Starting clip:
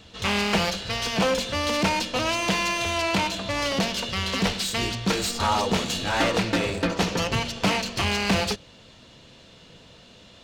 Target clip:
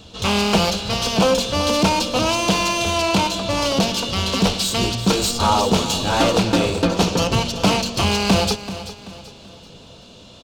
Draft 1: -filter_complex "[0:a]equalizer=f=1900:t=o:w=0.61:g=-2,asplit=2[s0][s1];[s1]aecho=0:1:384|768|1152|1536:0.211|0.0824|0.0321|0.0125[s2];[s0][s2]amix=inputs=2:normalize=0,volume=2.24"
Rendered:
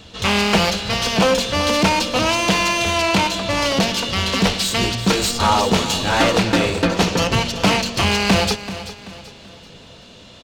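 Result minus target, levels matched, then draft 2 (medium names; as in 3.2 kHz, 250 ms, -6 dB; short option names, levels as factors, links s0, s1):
2 kHz band +4.0 dB
-filter_complex "[0:a]equalizer=f=1900:t=o:w=0.61:g=-12,asplit=2[s0][s1];[s1]aecho=0:1:384|768|1152|1536:0.211|0.0824|0.0321|0.0125[s2];[s0][s2]amix=inputs=2:normalize=0,volume=2.24"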